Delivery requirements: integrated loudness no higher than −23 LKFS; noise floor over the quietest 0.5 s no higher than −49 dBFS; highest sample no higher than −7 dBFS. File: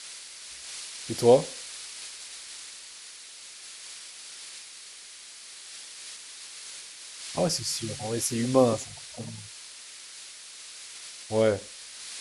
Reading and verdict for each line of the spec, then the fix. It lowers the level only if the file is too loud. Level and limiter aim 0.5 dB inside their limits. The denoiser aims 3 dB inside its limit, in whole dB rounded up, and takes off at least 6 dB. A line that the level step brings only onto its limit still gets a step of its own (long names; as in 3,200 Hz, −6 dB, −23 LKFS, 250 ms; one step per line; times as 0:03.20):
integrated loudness −30.0 LKFS: in spec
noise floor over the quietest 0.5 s −46 dBFS: out of spec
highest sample −6.5 dBFS: out of spec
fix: broadband denoise 6 dB, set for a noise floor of −46 dBFS
brickwall limiter −7.5 dBFS